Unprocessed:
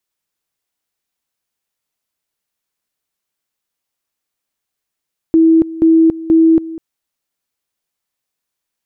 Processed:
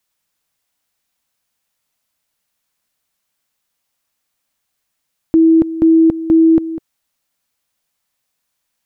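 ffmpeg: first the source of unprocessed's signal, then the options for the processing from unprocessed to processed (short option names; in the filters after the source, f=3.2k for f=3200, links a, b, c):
-f lavfi -i "aevalsrc='pow(10,(-5.5-17.5*gte(mod(t,0.48),0.28))/20)*sin(2*PI*325*t)':d=1.44:s=44100"
-filter_complex "[0:a]equalizer=f=380:w=4.9:g=-10.5,asplit=2[a][b];[b]alimiter=limit=-17dB:level=0:latency=1:release=26,volume=1dB[c];[a][c]amix=inputs=2:normalize=0"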